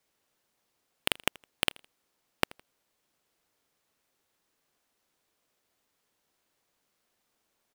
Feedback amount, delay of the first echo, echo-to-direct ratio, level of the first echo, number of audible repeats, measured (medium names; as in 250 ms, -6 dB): 32%, 81 ms, -23.5 dB, -24.0 dB, 2